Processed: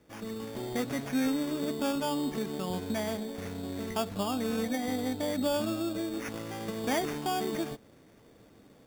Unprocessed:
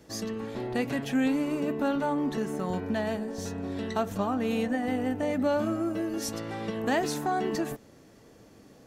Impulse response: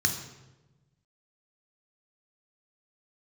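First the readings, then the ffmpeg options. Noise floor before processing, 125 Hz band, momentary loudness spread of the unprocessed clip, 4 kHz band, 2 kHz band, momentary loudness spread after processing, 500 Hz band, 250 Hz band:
−55 dBFS, −3.0 dB, 8 LU, +2.0 dB, −3.5 dB, 8 LU, −3.0 dB, −3.0 dB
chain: -af "lowpass=6700,acrusher=samples=11:mix=1:aa=0.000001,dynaudnorm=framelen=170:gausssize=3:maxgain=5dB,volume=-8dB"

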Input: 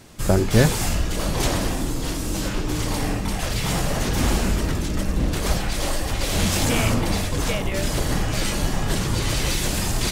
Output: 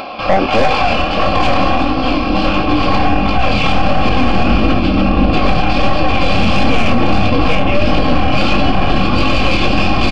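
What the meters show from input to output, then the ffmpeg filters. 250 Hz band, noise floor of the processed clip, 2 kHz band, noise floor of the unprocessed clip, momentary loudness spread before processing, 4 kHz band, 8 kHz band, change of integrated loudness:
+11.0 dB, −16 dBFS, +11.0 dB, −26 dBFS, 6 LU, +7.5 dB, below −10 dB, +9.0 dB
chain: -filter_complex "[0:a]crystalizer=i=1.5:c=0,asplit=3[link_01][link_02][link_03];[link_01]bandpass=frequency=730:width_type=q:width=8,volume=0dB[link_04];[link_02]bandpass=frequency=1090:width_type=q:width=8,volume=-6dB[link_05];[link_03]bandpass=frequency=2440:width_type=q:width=8,volume=-9dB[link_06];[link_04][link_05][link_06]amix=inputs=3:normalize=0,aecho=1:1:3.7:0.59,aresample=11025,aresample=44100,flanger=delay=18.5:depth=7.6:speed=1.5,aeval=exprs='(tanh(44.7*val(0)+0.5)-tanh(0.5))/44.7':channel_layout=same,bandreject=frequency=3800:width=14,acontrast=37,asubboost=boost=7.5:cutoff=240,asplit=2[link_07][link_08];[link_08]aecho=0:1:364:0.178[link_09];[link_07][link_09]amix=inputs=2:normalize=0,acompressor=mode=upward:threshold=-45dB:ratio=2.5,alimiter=level_in=27.5dB:limit=-1dB:release=50:level=0:latency=1,volume=-1dB"

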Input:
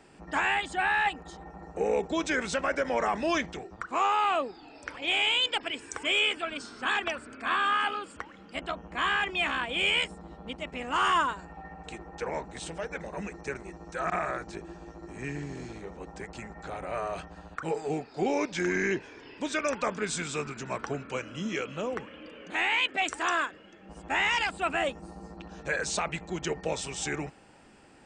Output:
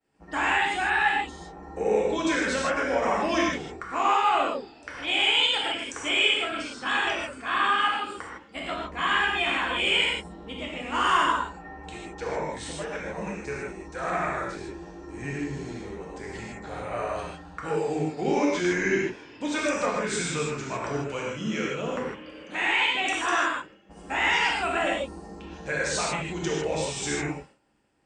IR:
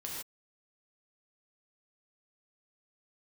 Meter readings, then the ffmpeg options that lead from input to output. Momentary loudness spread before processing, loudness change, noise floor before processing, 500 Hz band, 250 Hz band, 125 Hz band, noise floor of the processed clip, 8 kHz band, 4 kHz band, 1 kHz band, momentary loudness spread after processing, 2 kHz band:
17 LU, +3.5 dB, −52 dBFS, +4.0 dB, +4.5 dB, +4.5 dB, −48 dBFS, +3.5 dB, +4.0 dB, +3.5 dB, 16 LU, +3.5 dB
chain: -filter_complex "[0:a]acontrast=48,agate=range=-33dB:threshold=-38dB:ratio=3:detection=peak[link_01];[1:a]atrim=start_sample=2205[link_02];[link_01][link_02]afir=irnorm=-1:irlink=0,volume=-2.5dB"

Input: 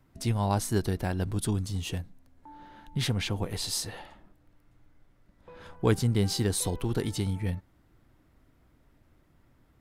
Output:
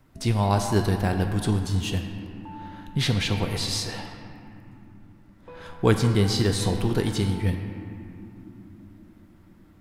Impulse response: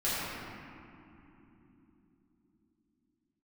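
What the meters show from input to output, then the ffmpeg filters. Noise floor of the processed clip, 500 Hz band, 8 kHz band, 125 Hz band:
−53 dBFS, +5.5 dB, +0.5 dB, +5.0 dB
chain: -filter_complex "[0:a]acrossover=split=6500[link_01][link_02];[link_02]acompressor=threshold=-46dB:ratio=4:attack=1:release=60[link_03];[link_01][link_03]amix=inputs=2:normalize=0,asplit=2[link_04][link_05];[1:a]atrim=start_sample=2205,lowshelf=frequency=440:gain=-9[link_06];[link_05][link_06]afir=irnorm=-1:irlink=0,volume=-11.5dB[link_07];[link_04][link_07]amix=inputs=2:normalize=0,volume=4dB"

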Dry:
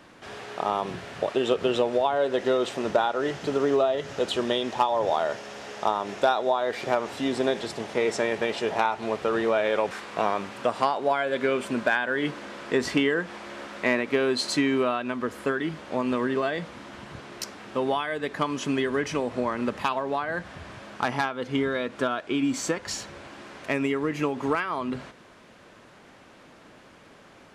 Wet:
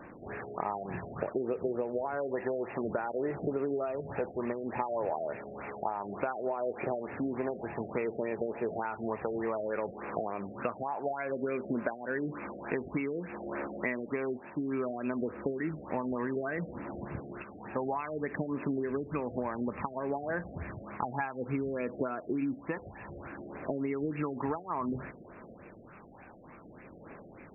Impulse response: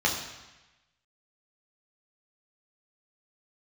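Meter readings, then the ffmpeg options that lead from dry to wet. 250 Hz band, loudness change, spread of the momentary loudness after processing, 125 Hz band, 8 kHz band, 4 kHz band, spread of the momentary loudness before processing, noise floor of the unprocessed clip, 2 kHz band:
−6.0 dB, −8.5 dB, 11 LU, −3.0 dB, below −40 dB, below −35 dB, 11 LU, −52 dBFS, −11.0 dB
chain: -filter_complex "[0:a]crystalizer=i=1.5:c=0,aphaser=in_gain=1:out_gain=1:delay=1.3:decay=0.35:speed=0.59:type=triangular,asplit=2[link_01][link_02];[1:a]atrim=start_sample=2205,asetrate=83790,aresample=44100,lowshelf=frequency=110:gain=-11.5[link_03];[link_02][link_03]afir=irnorm=-1:irlink=0,volume=-21.5dB[link_04];[link_01][link_04]amix=inputs=2:normalize=0,acompressor=threshold=-29dB:ratio=8,afftfilt=real='re*lt(b*sr/1024,730*pow(2800/730,0.5+0.5*sin(2*PI*3.4*pts/sr)))':imag='im*lt(b*sr/1024,730*pow(2800/730,0.5+0.5*sin(2*PI*3.4*pts/sr)))':win_size=1024:overlap=0.75"

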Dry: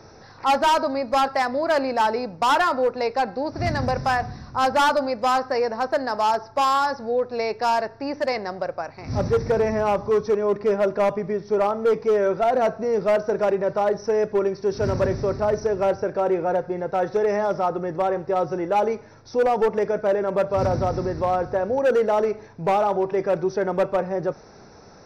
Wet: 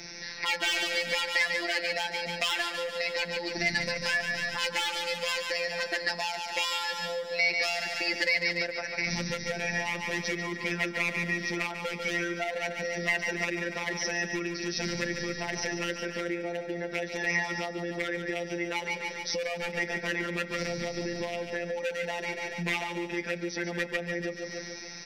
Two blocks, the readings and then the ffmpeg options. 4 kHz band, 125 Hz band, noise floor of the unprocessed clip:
+4.0 dB, −9.0 dB, −47 dBFS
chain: -filter_complex "[0:a]afftfilt=real='hypot(re,im)*cos(PI*b)':imag='0':win_size=1024:overlap=0.75,aecho=1:1:143|286|429|572|715|858|1001:0.376|0.207|0.114|0.0625|0.0344|0.0189|0.0104,acrossover=split=170|830|1400[link_01][link_02][link_03][link_04];[link_04]aeval=exprs='0.141*sin(PI/2*1.41*val(0)/0.141)':channel_layout=same[link_05];[link_01][link_02][link_03][link_05]amix=inputs=4:normalize=0,equalizer=frequency=240:width_type=o:width=0.45:gain=12,acompressor=threshold=-31dB:ratio=6,highshelf=frequency=1600:width_type=q:width=3:gain=8.5"

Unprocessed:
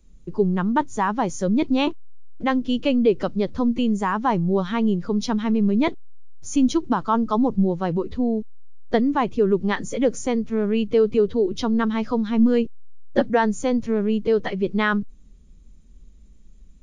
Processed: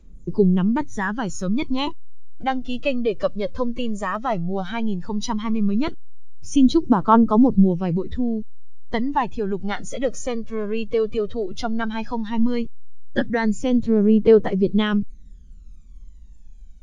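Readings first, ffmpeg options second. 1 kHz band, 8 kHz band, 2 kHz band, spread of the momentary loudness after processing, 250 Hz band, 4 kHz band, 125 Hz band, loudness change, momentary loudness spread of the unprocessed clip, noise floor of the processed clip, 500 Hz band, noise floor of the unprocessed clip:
0.0 dB, −1.0 dB, −1.0 dB, 12 LU, +0.5 dB, +0.5 dB, +2.0 dB, 0.0 dB, 6 LU, −41 dBFS, −0.5 dB, −47 dBFS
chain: -af "aphaser=in_gain=1:out_gain=1:delay=1.9:decay=0.67:speed=0.14:type=triangular,volume=-2.5dB"

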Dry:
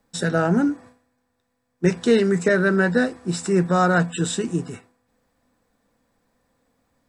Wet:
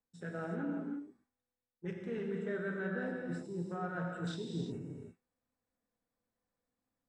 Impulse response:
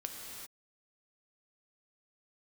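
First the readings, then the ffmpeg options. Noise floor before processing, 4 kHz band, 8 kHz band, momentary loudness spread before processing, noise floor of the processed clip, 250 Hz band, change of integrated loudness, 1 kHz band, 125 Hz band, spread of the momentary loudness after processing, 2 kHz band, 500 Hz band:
−73 dBFS, −20.0 dB, −29.0 dB, 9 LU, below −85 dBFS, −17.5 dB, −19.0 dB, −20.0 dB, −17.0 dB, 9 LU, −19.0 dB, −19.0 dB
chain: -filter_complex "[0:a]afwtdn=0.0251,areverse,acompressor=threshold=-32dB:ratio=5,areverse[link_01];[1:a]atrim=start_sample=2205,asetrate=48510,aresample=44100[link_02];[link_01][link_02]afir=irnorm=-1:irlink=0,volume=-4dB"

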